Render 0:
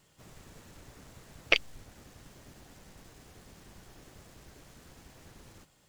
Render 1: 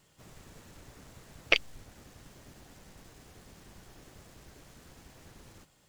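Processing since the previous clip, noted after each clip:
no processing that can be heard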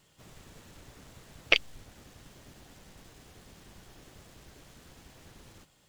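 parametric band 3,300 Hz +3 dB 0.77 octaves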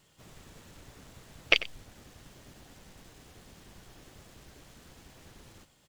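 single-tap delay 93 ms −16.5 dB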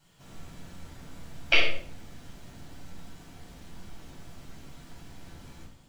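convolution reverb RT60 0.60 s, pre-delay 7 ms, DRR −6.5 dB
level −6.5 dB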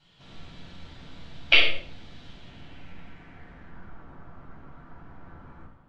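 low-pass filter sweep 3,700 Hz → 1,300 Hz, 0:02.28–0:04.07

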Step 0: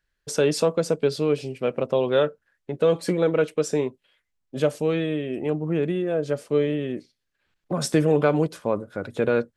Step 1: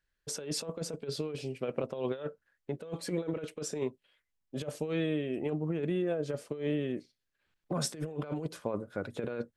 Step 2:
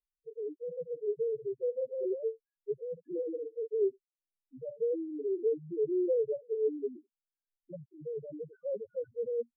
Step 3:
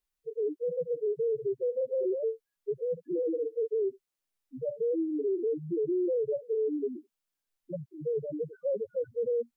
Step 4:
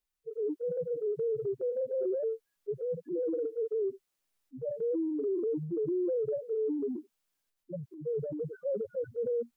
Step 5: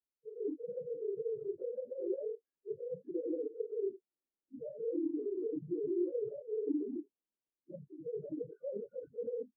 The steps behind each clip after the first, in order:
compressor whose output falls as the input rises −24 dBFS, ratio −0.5; level −8.5 dB
spectral peaks only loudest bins 1; Chebyshev low-pass with heavy ripple 1,600 Hz, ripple 9 dB; flat-topped bell 630 Hz +13 dB
brickwall limiter −32 dBFS, peak gain reduction 11 dB; level +7.5 dB
transient designer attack −1 dB, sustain +7 dB; level −2 dB
random phases in long frames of 50 ms; resonant band-pass 310 Hz, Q 1.7; level −2.5 dB

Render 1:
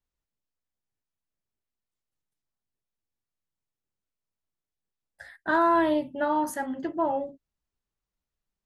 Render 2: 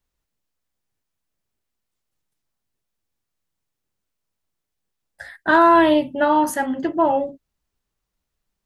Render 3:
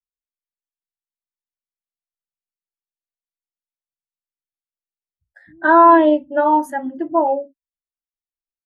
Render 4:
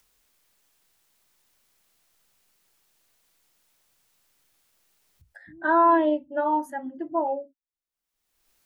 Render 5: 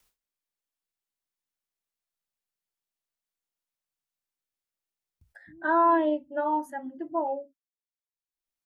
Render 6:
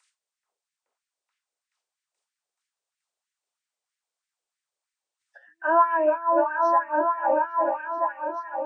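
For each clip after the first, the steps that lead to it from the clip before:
dynamic equaliser 2,800 Hz, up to +7 dB, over −51 dBFS, Q 2.6; level +8.5 dB
multiband delay without the direct sound lows, highs 160 ms, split 190 Hz; every bin expanded away from the loudest bin 1.5 to 1; level +3.5 dB
upward compression, threshold −30 dBFS; level −9 dB
noise gate with hold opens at −53 dBFS; level −3 dB
hearing-aid frequency compression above 1,700 Hz 1.5 to 1; echo whose low-pass opens from repeat to repeat 429 ms, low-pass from 750 Hz, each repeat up 1 octave, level 0 dB; auto-filter high-pass sine 3.1 Hz 460–1,900 Hz

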